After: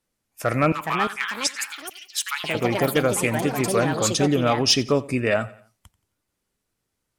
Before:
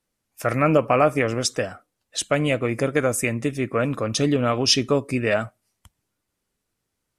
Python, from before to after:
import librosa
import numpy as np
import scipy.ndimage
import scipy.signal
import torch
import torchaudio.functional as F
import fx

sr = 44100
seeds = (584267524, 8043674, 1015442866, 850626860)

p1 = np.clip(x, -10.0 ** (-9.0 / 20.0), 10.0 ** (-9.0 / 20.0))
p2 = fx.cheby1_highpass(p1, sr, hz=830.0, order=8, at=(0.72, 2.55))
p3 = fx.echo_pitch(p2, sr, ms=531, semitones=5, count=3, db_per_echo=-6.0)
y = p3 + fx.echo_feedback(p3, sr, ms=88, feedback_pct=42, wet_db=-20, dry=0)